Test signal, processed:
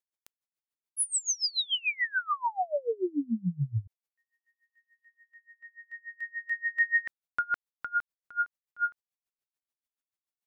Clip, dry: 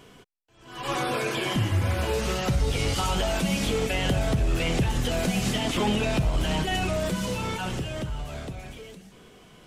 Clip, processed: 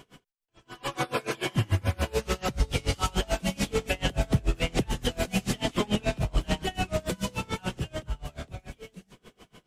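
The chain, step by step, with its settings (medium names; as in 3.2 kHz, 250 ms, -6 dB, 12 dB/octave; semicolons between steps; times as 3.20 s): logarithmic tremolo 6.9 Hz, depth 28 dB; trim +3 dB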